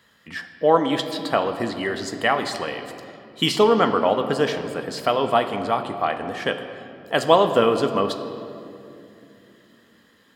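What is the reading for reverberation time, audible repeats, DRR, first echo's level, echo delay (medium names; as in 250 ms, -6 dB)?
2.8 s, no echo, 7.0 dB, no echo, no echo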